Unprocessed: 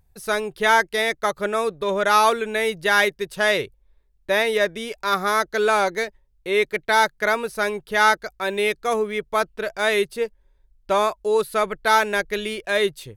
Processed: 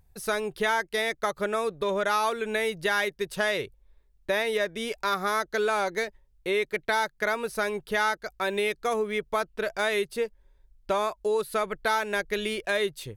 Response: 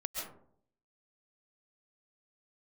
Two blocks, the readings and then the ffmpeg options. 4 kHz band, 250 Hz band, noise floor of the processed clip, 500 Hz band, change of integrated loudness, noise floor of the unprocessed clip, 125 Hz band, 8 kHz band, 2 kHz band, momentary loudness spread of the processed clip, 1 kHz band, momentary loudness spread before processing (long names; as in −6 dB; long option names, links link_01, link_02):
−6.5 dB, −4.5 dB, −63 dBFS, −5.5 dB, −6.5 dB, −62 dBFS, −4.0 dB, −6.5 dB, −7.0 dB, 4 LU, −7.5 dB, 8 LU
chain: -af "acompressor=threshold=-25dB:ratio=3"